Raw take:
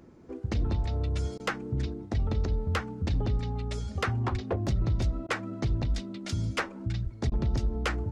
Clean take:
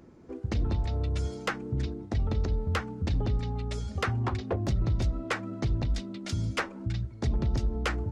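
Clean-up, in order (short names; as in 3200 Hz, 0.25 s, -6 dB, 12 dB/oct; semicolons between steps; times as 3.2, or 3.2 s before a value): de-plosive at 4.31/7.03; interpolate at 1.38/5.27/7.3, 16 ms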